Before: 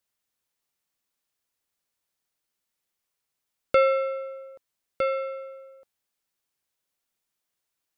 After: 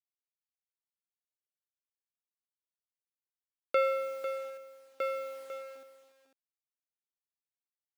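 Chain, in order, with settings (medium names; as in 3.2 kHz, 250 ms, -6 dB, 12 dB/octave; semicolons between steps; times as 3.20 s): send-on-delta sampling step -43 dBFS; high-pass 370 Hz 12 dB/octave; on a send: delay 498 ms -10.5 dB; on the sum: trim -7 dB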